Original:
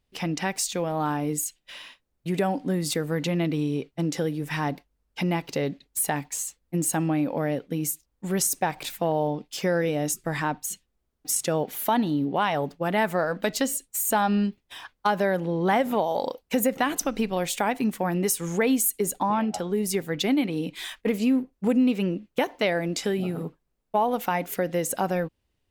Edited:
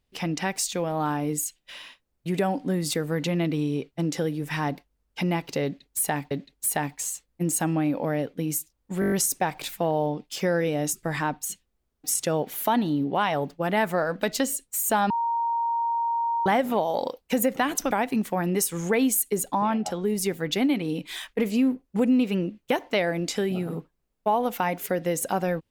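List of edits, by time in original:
5.64–6.31 loop, 2 plays
8.33 stutter 0.02 s, 7 plays
14.31–15.67 bleep 931 Hz -22.5 dBFS
17.12–17.59 cut

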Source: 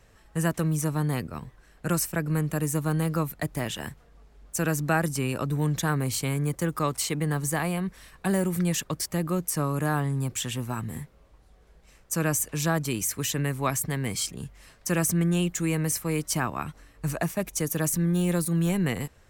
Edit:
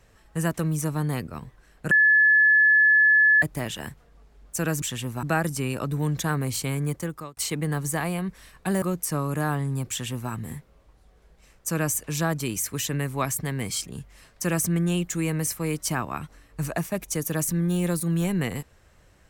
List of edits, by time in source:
1.91–3.42 bleep 1720 Hz -14 dBFS
6.5–6.96 fade out
8.41–9.27 cut
10.35–10.76 copy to 4.82

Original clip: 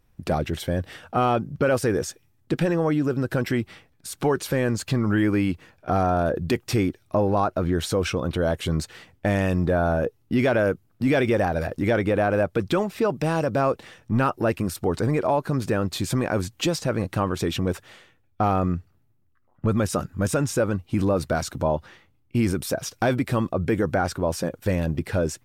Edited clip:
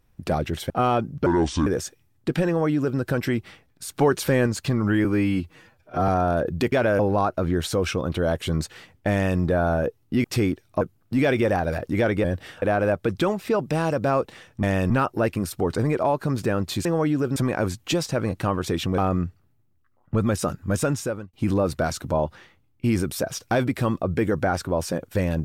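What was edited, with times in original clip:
0.7–1.08 move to 12.13
1.64–1.9 speed 64%
2.71–3.22 copy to 16.09
4.24–4.7 gain +3 dB
5.28–5.97 stretch 1.5×
6.61–7.18 swap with 10.43–10.7
9.31–9.58 copy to 14.14
17.71–18.49 cut
20.4–20.84 fade out

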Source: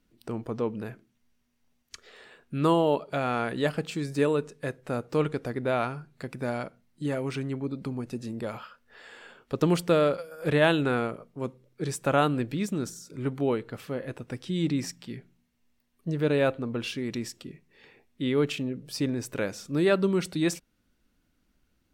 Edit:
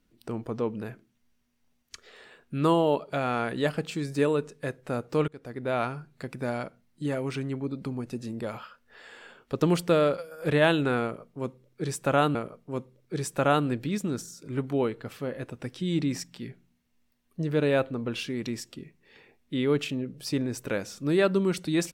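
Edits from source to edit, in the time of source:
5.28–5.82 fade in, from -22.5 dB
11.03–12.35 loop, 2 plays

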